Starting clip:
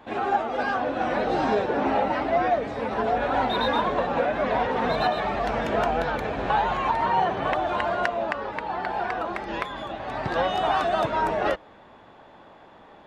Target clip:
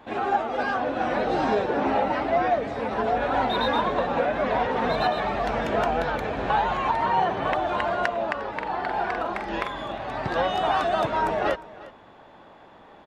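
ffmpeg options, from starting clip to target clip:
ffmpeg -i in.wav -filter_complex "[0:a]asettb=1/sr,asplit=3[link_01][link_02][link_03];[link_01]atrim=end=8.554[link_04];[link_02]atrim=start=8.55:end=10.07,asetpts=PTS-STARTPTS,afade=type=in:duration=0.004:curve=qsin,afade=type=out:start_time=1.516:duration=0.004:curve=qsin,asplit=2[link_05][link_06];[link_06]adelay=45,volume=-6dB[link_07];[link_05][link_07]amix=inputs=2:normalize=0,atrim=end_sample=67032[link_08];[link_03]atrim=start=10.066[link_09];[link_04][link_08]acrossfade=duration=0.004:curve1=hsin:curve2=qsin[link_10];[link_10][link_09]acrossfade=duration=0.004:curve1=qsin:curve2=hsin,aecho=1:1:354:0.112" out.wav

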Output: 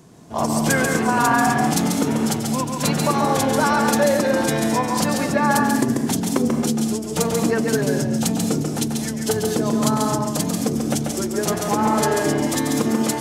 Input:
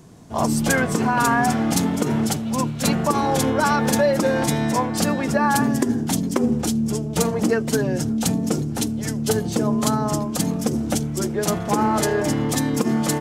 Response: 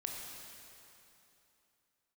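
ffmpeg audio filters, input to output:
-filter_complex "[0:a]lowshelf=frequency=80:gain=-10.5,asplit=2[link_01][link_02];[1:a]atrim=start_sample=2205,atrim=end_sample=6174,adelay=139[link_03];[link_02][link_03]afir=irnorm=-1:irlink=0,volume=-1.5dB[link_04];[link_01][link_04]amix=inputs=2:normalize=0"

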